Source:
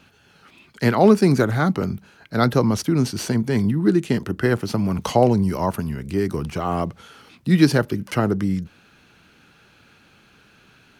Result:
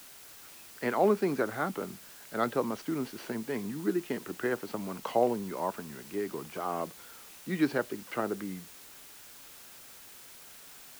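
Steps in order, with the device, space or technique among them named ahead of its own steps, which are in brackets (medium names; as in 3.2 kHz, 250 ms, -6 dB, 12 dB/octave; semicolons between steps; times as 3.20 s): wax cylinder (band-pass 320–2600 Hz; wow and flutter; white noise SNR 17 dB); trim -8.5 dB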